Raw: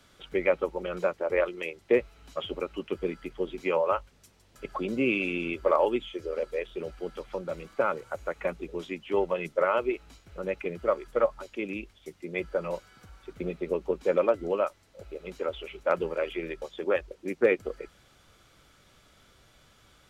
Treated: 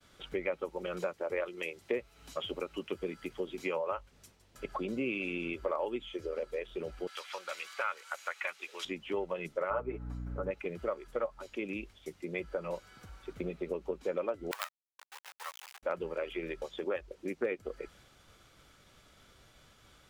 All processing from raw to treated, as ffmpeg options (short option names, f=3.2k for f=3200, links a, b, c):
-filter_complex "[0:a]asettb=1/sr,asplit=3[a][b][c];[a]atrim=end=0.524[d];[b]atrim=start=0.52:end=3.79,asetpts=PTS-STARTPTS,afade=t=in:d=0.004:c=qsin,afade=t=out:st=3.266:d=0.004:c=qsin,highpass=61,highshelf=f=4.5k:g=7[e];[c]atrim=start=3.786[f];[d][e]acrossfade=d=0.004:c1=hsin:c2=qsin[g];[g][f]acrossfade=d=0.004:c1=qsin:c2=hsin,asettb=1/sr,asplit=3[h][i][j];[h]atrim=end=7.074[k];[i]atrim=start=7.07:end=8.85,asetpts=PTS-STARTPTS,afade=t=in:d=0.004:c=qsin,afade=t=out:st=1.776:d=0.004:c=qsin,highpass=1.4k,equalizer=f=4.1k:w=0.41:g=4.5,acontrast=67[l];[j]atrim=start=8.846[m];[k][l]acrossfade=d=0.004:c1=hsin:c2=qsin[n];[n][m]acrossfade=d=0.004:c1=qsin:c2=hsin,asettb=1/sr,asplit=3[o][p][q];[o]atrim=end=9.704[r];[p]atrim=start=9.7:end=10.51,asetpts=PTS-STARTPTS,afade=t=in:d=0.004:c=qsin,afade=t=out:st=0.806:d=0.004:c=qsin,highshelf=f=2k:t=q:w=1.5:g=-12,aecho=1:1:6.9:0.74,atrim=end_sample=35721,aeval=exprs='val(0)+0.0141*(sin(2*PI*60*n/s)+sin(2*PI*2*60*n/s)/2+sin(2*PI*3*60*n/s)/3+sin(2*PI*4*60*n/s)/4+sin(2*PI*5*60*n/s)/5)':c=same[s];[q]atrim=start=10.506[t];[r][s]acrossfade=d=0.004:c1=hsin:c2=qsin[u];[u][t]acrossfade=d=0.004:c1=qsin:c2=hsin,asettb=1/sr,asplit=3[v][w][x];[v]atrim=end=14.514[y];[w]atrim=start=14.51:end=15.83,asetpts=PTS-STARTPTS,afade=t=in:d=0.004:c=qsin,afade=t=out:st=1.316:d=0.004:c=qsin,adynamicsmooth=sensitivity=2.5:basefreq=2k,acrusher=bits=4:dc=4:mix=0:aa=0.000001,highpass=f=950:w=0.5412,highpass=f=950:w=1.3066[z];[x]atrim=start=15.826[aa];[y][z]acrossfade=d=0.004:c1=hsin:c2=qsin[ab];[ab][aa]acrossfade=d=0.004:c1=qsin:c2=hsin,agate=range=-33dB:threshold=-57dB:ratio=3:detection=peak,acompressor=threshold=-35dB:ratio=2.5"